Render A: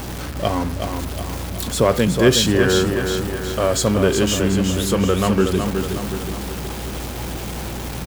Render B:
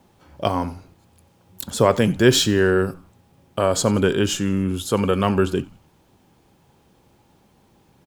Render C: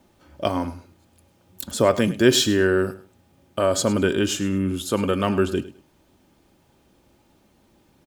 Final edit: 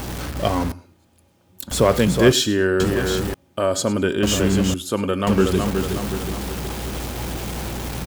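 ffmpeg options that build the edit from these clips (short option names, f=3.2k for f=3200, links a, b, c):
-filter_complex "[2:a]asplit=4[a][b][c][d];[0:a]asplit=5[e][f][g][h][i];[e]atrim=end=0.722[j];[a]atrim=start=0.718:end=1.712[k];[f]atrim=start=1.708:end=2.322[l];[b]atrim=start=2.318:end=2.802[m];[g]atrim=start=2.798:end=3.342[n];[c]atrim=start=3.338:end=4.232[o];[h]atrim=start=4.228:end=4.742[p];[d]atrim=start=4.738:end=5.272[q];[i]atrim=start=5.268[r];[j][k]acrossfade=d=0.004:c1=hsin:c2=hsin[s];[s][l]acrossfade=d=0.004:c1=hsin:c2=hsin[t];[t][m]acrossfade=d=0.004:c1=hsin:c2=hsin[u];[u][n]acrossfade=d=0.004:c1=hsin:c2=hsin[v];[v][o]acrossfade=d=0.004:c1=hsin:c2=hsin[w];[w][p]acrossfade=d=0.004:c1=hsin:c2=hsin[x];[x][q]acrossfade=d=0.004:c1=hsin:c2=hsin[y];[y][r]acrossfade=d=0.004:c1=hsin:c2=hsin"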